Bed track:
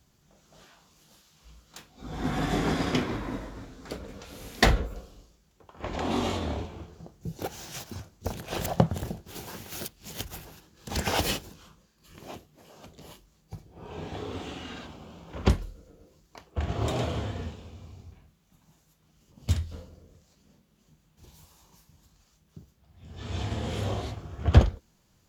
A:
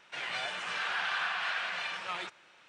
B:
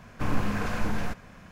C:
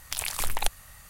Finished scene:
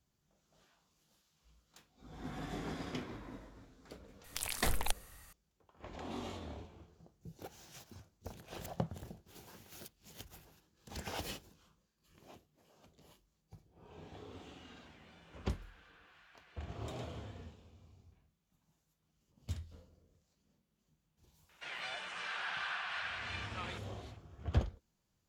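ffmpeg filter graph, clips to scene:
ffmpeg -i bed.wav -i cue0.wav -i cue1.wav -i cue2.wav -filter_complex "[1:a]asplit=2[link_01][link_02];[0:a]volume=-15dB[link_03];[link_01]acompressor=threshold=-47dB:ratio=6:attack=3.2:release=140:knee=1:detection=peak[link_04];[3:a]atrim=end=1.09,asetpts=PTS-STARTPTS,volume=-8dB,afade=type=in:duration=0.004:curve=hsin,afade=type=out:start_time=1.086:duration=0.004:curve=hsin,adelay=4240[link_05];[link_04]atrim=end=2.68,asetpts=PTS-STARTPTS,volume=-15dB,afade=type=in:duration=0.004:curve=hsin,afade=type=out:start_time=2.676:duration=0.004:curve=hsin,adelay=14740[link_06];[link_02]atrim=end=2.68,asetpts=PTS-STARTPTS,volume=-7dB,afade=type=in:duration=0.004:curve=hsin,afade=type=out:start_time=2.676:duration=0.004:curve=hsin,adelay=21490[link_07];[link_03][link_05][link_06][link_07]amix=inputs=4:normalize=0" out.wav

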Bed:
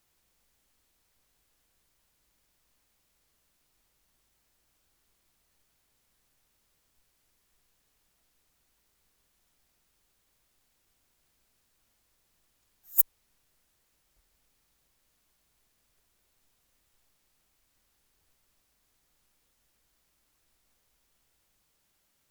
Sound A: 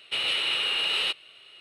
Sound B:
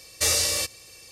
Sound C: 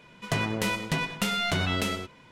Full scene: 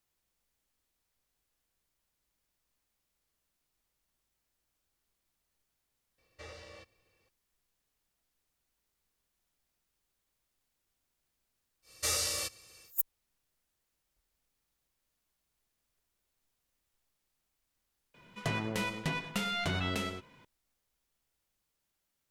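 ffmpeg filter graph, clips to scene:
ffmpeg -i bed.wav -i cue0.wav -i cue1.wav -i cue2.wav -filter_complex "[2:a]asplit=2[link_01][link_02];[0:a]volume=-9.5dB[link_03];[link_01]lowpass=2100[link_04];[link_02]equalizer=frequency=1300:width=5.2:gain=8[link_05];[3:a]highshelf=frequency=5500:gain=-3[link_06];[link_04]atrim=end=1.11,asetpts=PTS-STARTPTS,volume=-18dB,afade=type=in:duration=0.004:curve=hsin,afade=type=out:start_time=1.106:duration=0.004:curve=hsin,adelay=272538S[link_07];[link_05]atrim=end=1.11,asetpts=PTS-STARTPTS,volume=-9.5dB,afade=type=in:duration=0.1,afade=type=out:start_time=1.01:duration=0.1,adelay=11820[link_08];[link_06]atrim=end=2.31,asetpts=PTS-STARTPTS,volume=-6dB,afade=type=in:duration=0.004:curve=hsin,afade=type=out:start_time=2.306:duration=0.004:curve=hsin,adelay=18140[link_09];[link_03][link_07][link_08][link_09]amix=inputs=4:normalize=0" out.wav

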